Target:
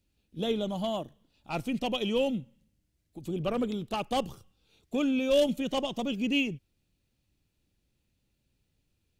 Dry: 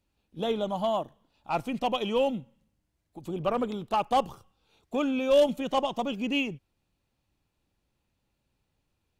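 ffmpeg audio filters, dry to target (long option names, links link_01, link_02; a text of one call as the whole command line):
ffmpeg -i in.wav -af "equalizer=frequency=950:width_type=o:width=1.5:gain=-11.5,volume=2.5dB" out.wav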